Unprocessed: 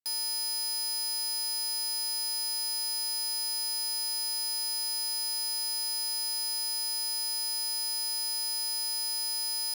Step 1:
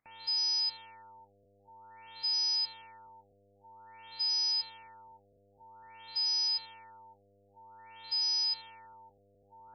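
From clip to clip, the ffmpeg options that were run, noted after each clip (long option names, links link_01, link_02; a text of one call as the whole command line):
ffmpeg -i in.wav -af "equalizer=frequency=400:width_type=o:width=0.67:gain=-8,equalizer=frequency=1600:width_type=o:width=0.67:gain=-7,equalizer=frequency=6300:width_type=o:width=0.67:gain=8,acompressor=mode=upward:threshold=-58dB:ratio=2.5,afftfilt=real='re*lt(b*sr/1024,700*pow(6300/700,0.5+0.5*sin(2*PI*0.51*pts/sr)))':imag='im*lt(b*sr/1024,700*pow(6300/700,0.5+0.5*sin(2*PI*0.51*pts/sr)))':win_size=1024:overlap=0.75" out.wav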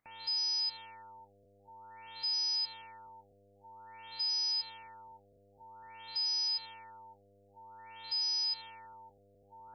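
ffmpeg -i in.wav -af "alimiter=level_in=6dB:limit=-24dB:level=0:latency=1:release=100,volume=-6dB,volume=1.5dB" out.wav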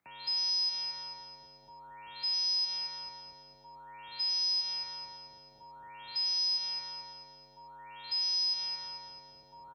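ffmpeg -i in.wav -filter_complex "[0:a]afreqshift=42,asplit=2[link_01][link_02];[link_02]aecho=0:1:220|440|660|880|1100:0.501|0.226|0.101|0.0457|0.0206[link_03];[link_01][link_03]amix=inputs=2:normalize=0,volume=1.5dB" out.wav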